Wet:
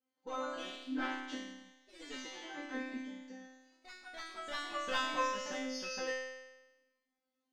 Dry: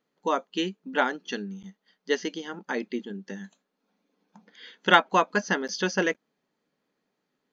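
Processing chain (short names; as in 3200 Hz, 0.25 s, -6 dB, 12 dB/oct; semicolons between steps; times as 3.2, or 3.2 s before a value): one diode to ground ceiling -18 dBFS; resonator 260 Hz, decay 1.1 s, mix 100%; echoes that change speed 0.132 s, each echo +2 st, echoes 3, each echo -6 dB; gain +10 dB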